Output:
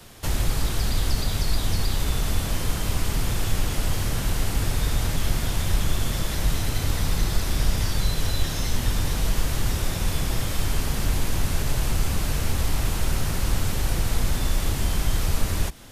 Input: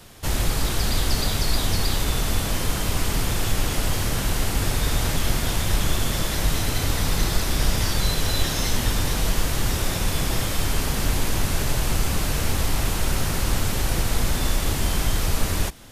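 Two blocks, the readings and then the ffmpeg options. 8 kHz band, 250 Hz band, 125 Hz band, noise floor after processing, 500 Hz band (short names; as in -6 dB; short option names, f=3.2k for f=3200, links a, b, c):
-4.0 dB, -3.0 dB, -0.5 dB, -28 dBFS, -4.0 dB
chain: -filter_complex "[0:a]acrossover=split=170[a][b];[b]acompressor=threshold=-29dB:ratio=6[c];[a][c]amix=inputs=2:normalize=0"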